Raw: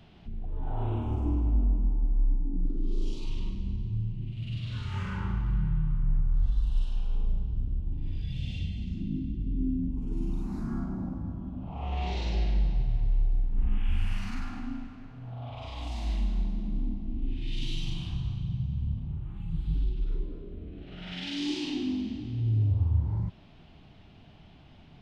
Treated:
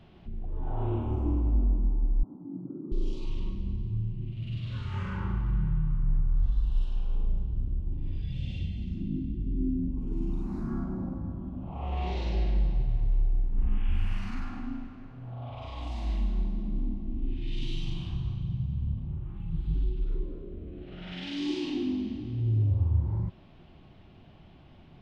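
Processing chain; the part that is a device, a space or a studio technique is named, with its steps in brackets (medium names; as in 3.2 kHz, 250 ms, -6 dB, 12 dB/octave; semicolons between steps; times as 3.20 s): inside a helmet (treble shelf 3.9 kHz -8.5 dB; small resonant body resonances 360/540/1100 Hz, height 7 dB, ringing for 95 ms); 2.23–2.92 s: Chebyshev band-pass 120–1400 Hz, order 4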